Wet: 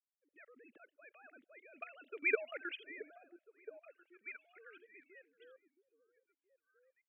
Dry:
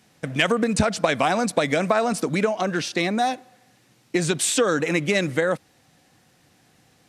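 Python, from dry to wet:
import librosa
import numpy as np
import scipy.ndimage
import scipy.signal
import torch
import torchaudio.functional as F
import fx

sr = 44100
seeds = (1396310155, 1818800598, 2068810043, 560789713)

p1 = fx.sine_speech(x, sr)
p2 = fx.doppler_pass(p1, sr, speed_mps=16, closest_m=3.0, pass_at_s=2.33)
p3 = scipy.signal.sosfilt(scipy.signal.bessel(2, 190.0, 'highpass', norm='mag', fs=sr, output='sos'), p2)
p4 = fx.peak_eq(p3, sr, hz=720.0, db=-10.5, octaves=0.3)
p5 = fx.level_steps(p4, sr, step_db=16)
p6 = fx.env_lowpass(p5, sr, base_hz=390.0, full_db=-35.0)
p7 = np.diff(p6, prepend=0.0)
p8 = fx.fixed_phaser(p7, sr, hz=2400.0, stages=4)
p9 = p8 + fx.echo_stepped(p8, sr, ms=671, hz=260.0, octaves=1.4, feedback_pct=70, wet_db=-7.5, dry=0)
y = p9 * librosa.db_to_amplitude(14.5)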